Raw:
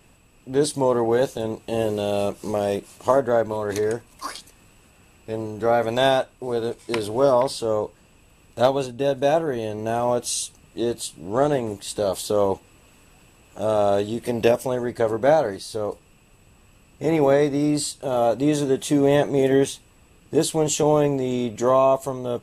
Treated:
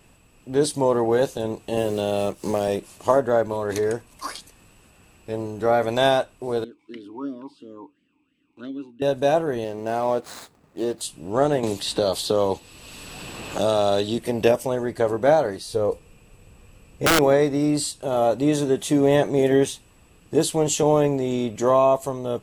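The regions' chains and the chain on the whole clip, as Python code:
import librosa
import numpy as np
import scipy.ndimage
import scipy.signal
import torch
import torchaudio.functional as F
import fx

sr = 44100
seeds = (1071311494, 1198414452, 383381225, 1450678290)

y = fx.chain(x, sr, fx.law_mismatch(coded='A'),
    fx.band_squash(depth_pct=70), at=(1.77, 2.68))
y = fx.chain(y, sr, fx.dynamic_eq(hz=2200.0, q=1.3, threshold_db=-42.0, ratio=4.0, max_db=-7),
    fx.vowel_sweep(vowels='i-u', hz=2.9), at=(6.64, 9.02))
y = fx.chain(y, sr, fx.median_filter(points=15),
    fx.highpass(hz=210.0, slope=6), at=(9.64, 11.01))
y = fx.chain(y, sr, fx.peak_eq(hz=4100.0, db=9.0, octaves=0.84),
    fx.band_squash(depth_pct=70), at=(11.63, 14.18))
y = fx.chain(y, sr, fx.low_shelf(hz=150.0, db=7.0),
    fx.small_body(hz=(480.0, 2400.0), ring_ms=40, db=8),
    fx.overflow_wrap(gain_db=12.0), at=(15.67, 17.19))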